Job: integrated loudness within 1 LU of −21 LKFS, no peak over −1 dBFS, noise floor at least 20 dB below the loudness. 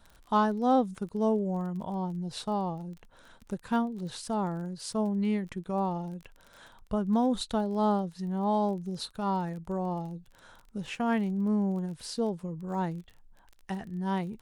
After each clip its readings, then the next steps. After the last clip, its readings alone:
crackle rate 25 per second; integrated loudness −31.0 LKFS; sample peak −14.5 dBFS; target loudness −21.0 LKFS
→ click removal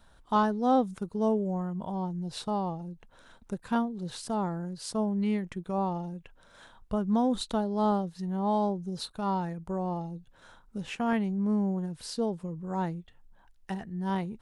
crackle rate 0 per second; integrated loudness −31.0 LKFS; sample peak −14.5 dBFS; target loudness −21.0 LKFS
→ level +10 dB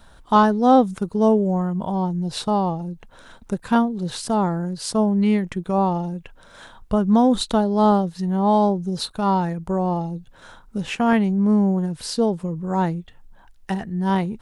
integrated loudness −21.0 LKFS; sample peak −4.5 dBFS; background noise floor −49 dBFS

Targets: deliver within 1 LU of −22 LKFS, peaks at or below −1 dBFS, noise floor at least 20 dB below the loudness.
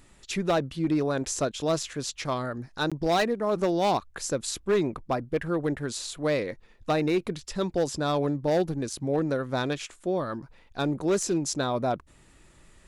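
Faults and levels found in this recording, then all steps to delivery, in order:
share of clipped samples 0.9%; peaks flattened at −18.5 dBFS; number of dropouts 1; longest dropout 16 ms; integrated loudness −28.0 LKFS; sample peak −18.5 dBFS; target loudness −22.0 LKFS
→ clipped peaks rebuilt −18.5 dBFS
repair the gap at 0:02.90, 16 ms
level +6 dB

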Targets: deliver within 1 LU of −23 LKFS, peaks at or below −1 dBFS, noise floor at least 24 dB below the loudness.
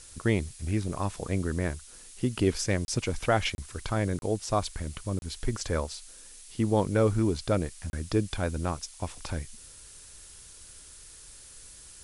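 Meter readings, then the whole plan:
number of dropouts 5; longest dropout 31 ms; background noise floor −50 dBFS; target noise floor −54 dBFS; integrated loudness −30.0 LKFS; sample peak −11.5 dBFS; target loudness −23.0 LKFS
→ repair the gap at 0:02.85/0:03.55/0:04.19/0:05.19/0:07.90, 31 ms
noise reduction from a noise print 6 dB
level +7 dB

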